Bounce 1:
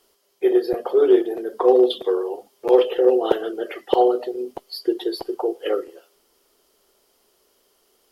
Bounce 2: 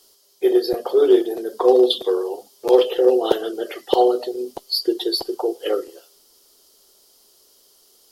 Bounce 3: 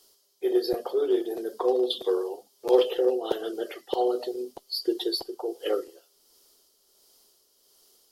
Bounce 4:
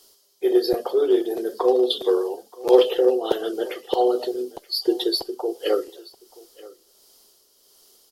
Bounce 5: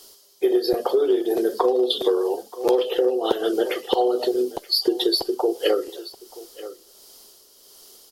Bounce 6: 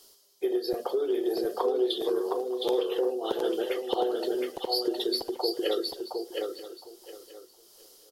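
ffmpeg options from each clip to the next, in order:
ffmpeg -i in.wav -af "highshelf=frequency=3200:width_type=q:width=1.5:gain=8.5,volume=1dB" out.wav
ffmpeg -i in.wav -af "tremolo=f=1.4:d=0.5,volume=-5dB" out.wav
ffmpeg -i in.wav -af "aecho=1:1:928:0.0841,volume=5.5dB" out.wav
ffmpeg -i in.wav -af "acompressor=threshold=-23dB:ratio=10,volume=7dB" out.wav
ffmpeg -i in.wav -af "aecho=1:1:714|1428|2142:0.631|0.114|0.0204,volume=-8.5dB" out.wav

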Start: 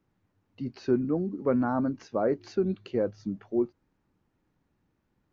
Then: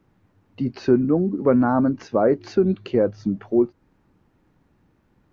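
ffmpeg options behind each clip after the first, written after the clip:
ffmpeg -i in.wav -filter_complex "[0:a]highshelf=frequency=3800:gain=-7,asplit=2[link_01][link_02];[link_02]acompressor=threshold=-35dB:ratio=6,volume=-1dB[link_03];[link_01][link_03]amix=inputs=2:normalize=0,volume=6.5dB" out.wav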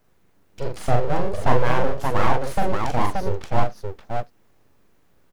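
ffmpeg -i in.wav -af "crystalizer=i=2.5:c=0,aeval=exprs='abs(val(0))':channel_layout=same,aecho=1:1:41|86|577:0.668|0.106|0.668,volume=-1dB" out.wav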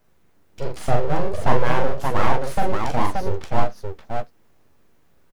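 ffmpeg -i in.wav -filter_complex "[0:a]asplit=2[link_01][link_02];[link_02]adelay=13,volume=-10.5dB[link_03];[link_01][link_03]amix=inputs=2:normalize=0" out.wav

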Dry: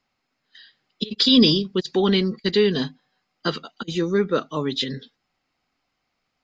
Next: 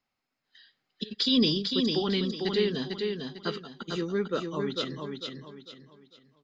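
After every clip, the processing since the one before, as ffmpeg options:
ffmpeg -i in.wav -af "aecho=1:1:449|898|1347|1796:0.596|0.197|0.0649|0.0214,volume=-8.5dB" out.wav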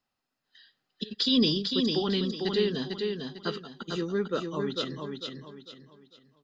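ffmpeg -i in.wav -af "bandreject=frequency=2200:width=6.8" out.wav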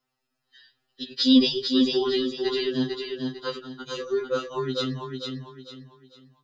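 ffmpeg -i in.wav -af "afftfilt=real='re*2.45*eq(mod(b,6),0)':imag='im*2.45*eq(mod(b,6),0)':win_size=2048:overlap=0.75,volume=5dB" out.wav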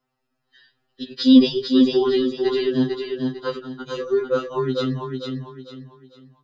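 ffmpeg -i in.wav -af "highshelf=frequency=2300:gain=-11,volume=6dB" out.wav

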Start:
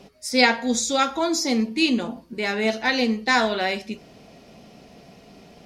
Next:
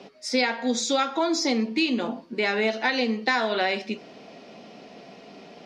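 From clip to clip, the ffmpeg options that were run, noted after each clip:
ffmpeg -i in.wav -filter_complex "[0:a]acrossover=split=190 5900:gain=0.0708 1 0.0891[link_01][link_02][link_03];[link_01][link_02][link_03]amix=inputs=3:normalize=0,acompressor=threshold=-24dB:ratio=6,volume=4dB" out.wav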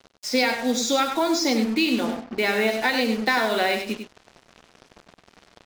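ffmpeg -i in.wav -af "acrusher=bits=5:mix=0:aa=0.5,aecho=1:1:98:0.398,volume=1.5dB" out.wav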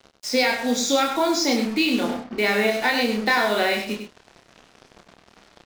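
ffmpeg -i in.wav -filter_complex "[0:a]asplit=2[link_01][link_02];[link_02]adelay=29,volume=-4.5dB[link_03];[link_01][link_03]amix=inputs=2:normalize=0" out.wav

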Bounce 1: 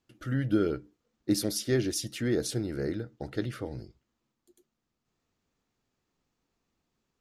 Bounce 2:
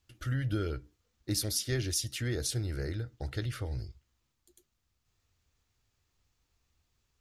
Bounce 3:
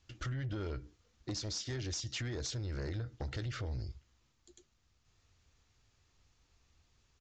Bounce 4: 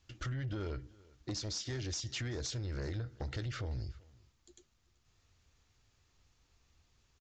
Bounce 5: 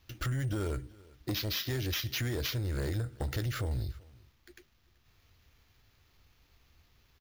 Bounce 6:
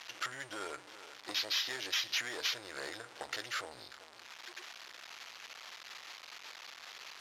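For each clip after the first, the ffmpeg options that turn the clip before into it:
ffmpeg -i in.wav -filter_complex "[0:a]tiltshelf=frequency=1400:gain=-5,asplit=2[link_01][link_02];[link_02]acompressor=threshold=-39dB:ratio=6,volume=-0.5dB[link_03];[link_01][link_03]amix=inputs=2:normalize=0,lowshelf=frequency=130:width_type=q:width=1.5:gain=13,volume=-5dB" out.wav
ffmpeg -i in.wav -af "acompressor=threshold=-37dB:ratio=12,aresample=16000,asoftclip=type=tanh:threshold=-38.5dB,aresample=44100,volume=5.5dB" out.wav
ffmpeg -i in.wav -af "aecho=1:1:383:0.0668" out.wav
ffmpeg -i in.wav -af "acrusher=samples=5:mix=1:aa=0.000001,volume=5.5dB" out.wav
ffmpeg -i in.wav -af "aeval=exprs='val(0)+0.5*0.00944*sgn(val(0))':channel_layout=same,highpass=780,lowpass=7800,volume=1dB" out.wav

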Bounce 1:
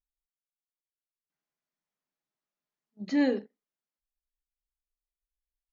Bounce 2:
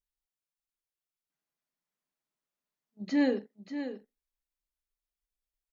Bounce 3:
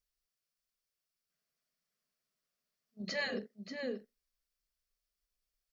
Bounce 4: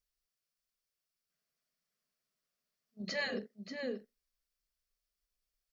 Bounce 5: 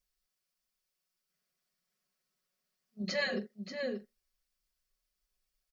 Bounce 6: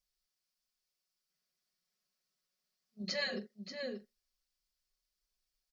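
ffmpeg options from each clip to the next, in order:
ffmpeg -i in.wav -af "aecho=1:1:585:0.316,volume=-1dB" out.wav
ffmpeg -i in.wav -af "afftfilt=real='re*lt(hypot(re,im),0.178)':imag='im*lt(hypot(re,im),0.178)':win_size=1024:overlap=0.75,superequalizer=6b=0.447:9b=0.355:14b=1.78,volume=2.5dB" out.wav
ffmpeg -i in.wav -af anull out.wav
ffmpeg -i in.wav -af "aecho=1:1:5.4:0.65,volume=1.5dB" out.wav
ffmpeg -i in.wav -af "equalizer=frequency=4800:width=1.2:gain=6.5,volume=-5dB" out.wav

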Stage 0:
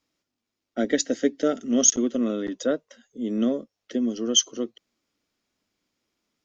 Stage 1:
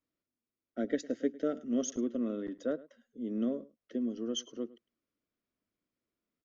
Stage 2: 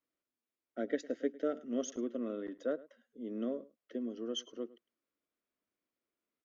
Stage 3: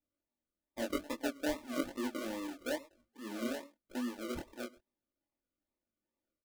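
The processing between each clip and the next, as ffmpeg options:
ffmpeg -i in.wav -filter_complex "[0:a]lowpass=frequency=1300:poles=1,equalizer=frequency=830:width_type=o:width=0.21:gain=-10.5,asplit=2[link_01][link_02];[link_02]adelay=105,volume=-20dB,highshelf=frequency=4000:gain=-2.36[link_03];[link_01][link_03]amix=inputs=2:normalize=0,volume=-8.5dB" out.wav
ffmpeg -i in.wav -af "bass=frequency=250:gain=-11,treble=frequency=4000:gain=-7" out.wav
ffmpeg -i in.wav -af "acrusher=samples=40:mix=1:aa=0.000001:lfo=1:lforange=24:lforate=2.4,aecho=1:1:3.4:0.54,flanger=delay=20:depth=6.4:speed=1" out.wav

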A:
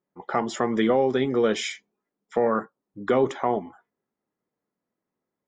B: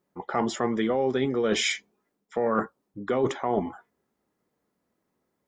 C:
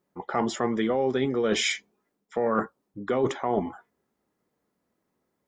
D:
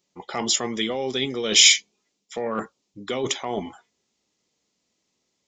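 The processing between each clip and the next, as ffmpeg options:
ffmpeg -i in.wav -af "areverse,acompressor=threshold=-30dB:ratio=6,areverse,equalizer=frequency=65:width_type=o:width=0.48:gain=10.5,volume=7.5dB" out.wav
ffmpeg -i in.wav -af anull out.wav
ffmpeg -i in.wav -af "aresample=16000,aresample=44100,aexciter=amount=8.3:drive=2.9:freq=2300,volume=-2.5dB" out.wav

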